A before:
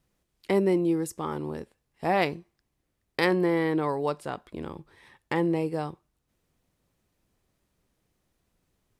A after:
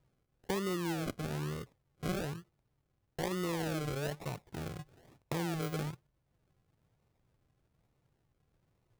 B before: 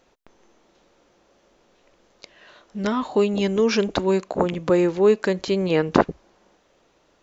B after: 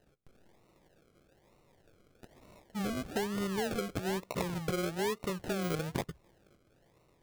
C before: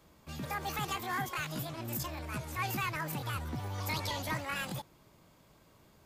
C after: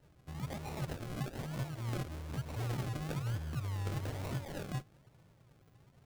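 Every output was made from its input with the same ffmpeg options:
-af "equalizer=f=125:t=o:w=1:g=11,equalizer=f=250:t=o:w=1:g=-7,equalizer=f=1000:t=o:w=1:g=-8,equalizer=f=4000:t=o:w=1:g=-9,equalizer=f=8000:t=o:w=1:g=11,acompressor=threshold=0.0355:ratio=4,acrusher=samples=38:mix=1:aa=0.000001:lfo=1:lforange=22.8:lforate=1.1,volume=0.668"

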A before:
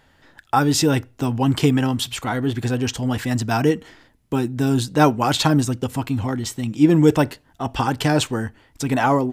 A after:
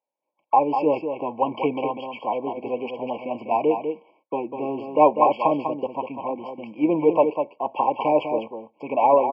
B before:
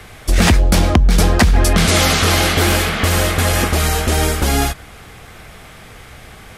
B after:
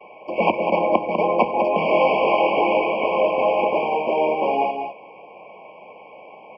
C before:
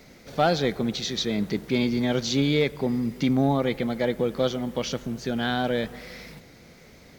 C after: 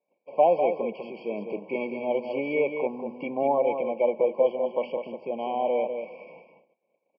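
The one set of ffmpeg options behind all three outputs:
-filter_complex "[0:a]agate=range=0.0355:threshold=0.00501:ratio=16:detection=peak,highpass=f=250:w=0.5412,highpass=f=250:w=1.3066,equalizer=f=260:t=q:w=4:g=-9,equalizer=f=380:t=q:w=4:g=-3,equalizer=f=560:t=q:w=4:g=9,equalizer=f=850:t=q:w=4:g=3,equalizer=f=1200:t=q:w=4:g=9,equalizer=f=2100:t=q:w=4:g=8,lowpass=f=2200:w=0.5412,lowpass=f=2200:w=1.3066,asplit=2[s0][s1];[s1]aecho=0:1:198:0.447[s2];[s0][s2]amix=inputs=2:normalize=0,afftfilt=real='re*eq(mod(floor(b*sr/1024/1100),2),0)':imag='im*eq(mod(floor(b*sr/1024/1100),2),0)':win_size=1024:overlap=0.75,volume=0.794"

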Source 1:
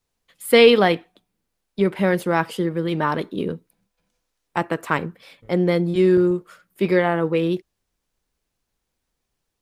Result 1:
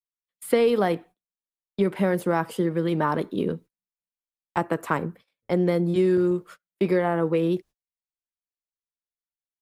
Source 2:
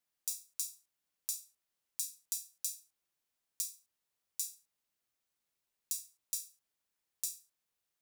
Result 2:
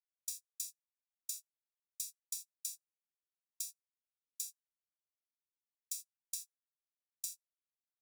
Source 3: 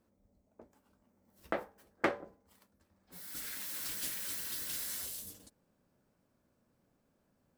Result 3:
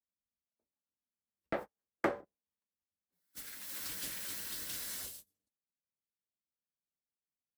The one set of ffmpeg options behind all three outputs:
-filter_complex "[0:a]agate=range=0.0178:threshold=0.00891:ratio=16:detection=peak,acrossover=split=110|1600|6500[s0][s1][s2][s3];[s0]acompressor=threshold=0.00398:ratio=4[s4];[s1]acompressor=threshold=0.126:ratio=4[s5];[s2]acompressor=threshold=0.00708:ratio=4[s6];[s3]acompressor=threshold=0.01:ratio=4[s7];[s4][s5][s6][s7]amix=inputs=4:normalize=0"

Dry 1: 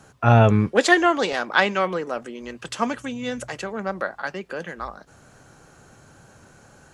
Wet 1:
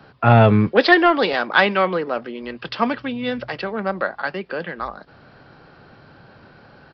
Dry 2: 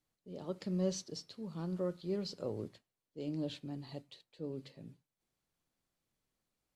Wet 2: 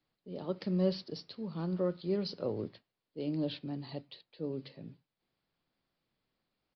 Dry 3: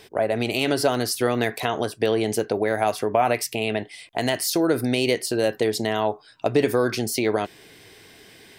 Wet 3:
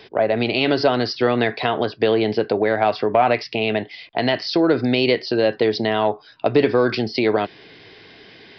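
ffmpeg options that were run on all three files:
-filter_complex "[0:a]acrossover=split=110[s0][s1];[s1]acontrast=35[s2];[s0][s2]amix=inputs=2:normalize=0,aresample=11025,aresample=44100,volume=0.891"

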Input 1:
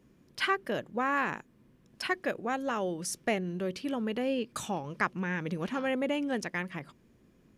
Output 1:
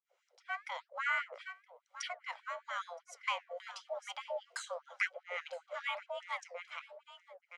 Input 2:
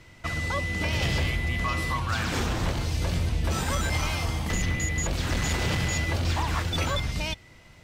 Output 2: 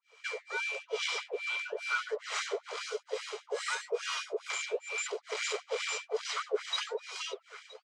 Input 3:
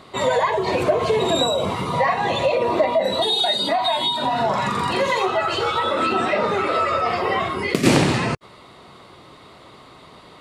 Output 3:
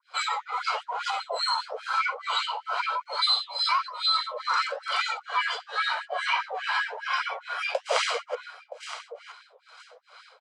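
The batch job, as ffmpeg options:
-filter_complex "[0:a]aecho=1:1:970|1940:0.2|0.0359,acrossover=split=450[s0][s1];[s0]aeval=exprs='val(0)*(1-1/2+1/2*cos(2*PI*2.3*n/s))':c=same[s2];[s1]aeval=exprs='val(0)*(1-1/2-1/2*cos(2*PI*2.3*n/s))':c=same[s3];[s2][s3]amix=inputs=2:normalize=0,asplit=2[s4][s5];[s5]aeval=exprs='sgn(val(0))*max(abs(val(0))-0.00398,0)':c=same,volume=0.282[s6];[s4][s6]amix=inputs=2:normalize=0,aecho=1:1:1.1:0.41,afreqshift=350,flanger=delay=2.6:depth=9.9:regen=79:speed=0.98:shape=sinusoidal,lowpass=f=8100:w=0.5412,lowpass=f=8100:w=1.3066,afftfilt=real='re*gte(b*sr/1024,380*pow(1600/380,0.5+0.5*sin(2*PI*5*pts/sr)))':imag='im*gte(b*sr/1024,380*pow(1600/380,0.5+0.5*sin(2*PI*5*pts/sr)))':win_size=1024:overlap=0.75"

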